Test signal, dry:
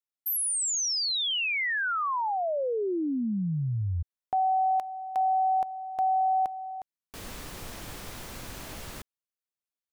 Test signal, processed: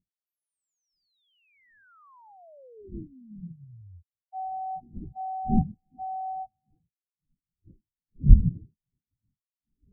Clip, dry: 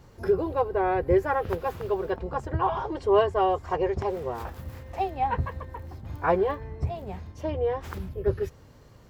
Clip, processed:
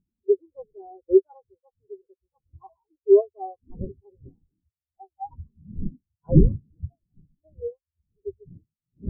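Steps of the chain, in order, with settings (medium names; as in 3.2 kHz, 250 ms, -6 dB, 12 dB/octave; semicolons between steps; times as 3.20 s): wind noise 290 Hz -27 dBFS; spectral contrast expander 4:1; trim +3 dB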